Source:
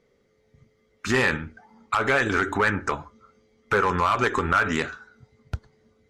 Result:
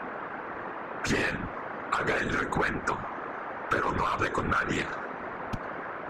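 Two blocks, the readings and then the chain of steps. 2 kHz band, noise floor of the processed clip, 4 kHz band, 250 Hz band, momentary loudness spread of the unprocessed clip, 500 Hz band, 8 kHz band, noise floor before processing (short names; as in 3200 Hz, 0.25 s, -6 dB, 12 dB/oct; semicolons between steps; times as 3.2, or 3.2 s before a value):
-5.5 dB, -39 dBFS, -5.0 dB, -4.0 dB, 16 LU, -5.5 dB, -3.5 dB, -66 dBFS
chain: band noise 220–1600 Hz -37 dBFS; compressor 6:1, threshold -24 dBFS, peak gain reduction 8.5 dB; whisperiser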